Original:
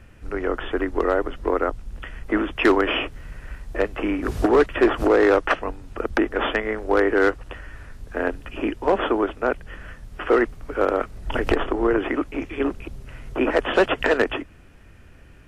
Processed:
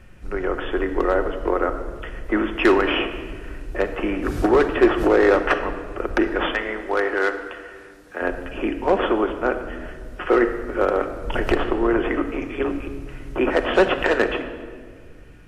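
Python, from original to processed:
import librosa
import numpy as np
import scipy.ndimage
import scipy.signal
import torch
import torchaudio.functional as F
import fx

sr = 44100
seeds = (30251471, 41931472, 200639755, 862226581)

y = fx.highpass(x, sr, hz=640.0, slope=6, at=(6.46, 8.22))
y = fx.room_shoebox(y, sr, seeds[0], volume_m3=2500.0, walls='mixed', distance_m=0.98)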